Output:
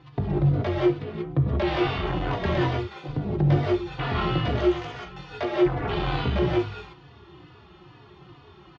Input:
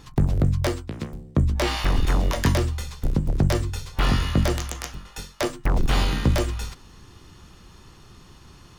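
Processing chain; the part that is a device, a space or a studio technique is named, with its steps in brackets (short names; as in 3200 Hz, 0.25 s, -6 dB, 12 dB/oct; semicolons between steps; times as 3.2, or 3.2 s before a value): 2.67–3.08 HPF 270 Hz 12 dB/oct; non-linear reverb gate 0.21 s rising, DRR -4 dB; barber-pole flanger into a guitar amplifier (endless flanger 3.4 ms -2.3 Hz; soft clip -12 dBFS, distortion -19 dB; speaker cabinet 86–3600 Hz, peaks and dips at 140 Hz +7 dB, 230 Hz -8 dB, 350 Hz +6 dB, 720 Hz +5 dB); gain -2 dB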